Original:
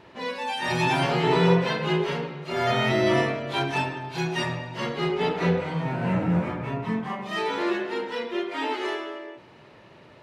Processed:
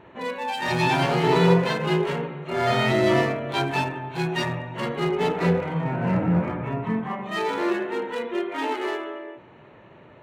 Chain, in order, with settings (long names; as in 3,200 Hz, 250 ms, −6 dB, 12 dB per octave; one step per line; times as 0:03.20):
adaptive Wiener filter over 9 samples
parametric band 4,300 Hz +4.5 dB 0.27 octaves
level +2 dB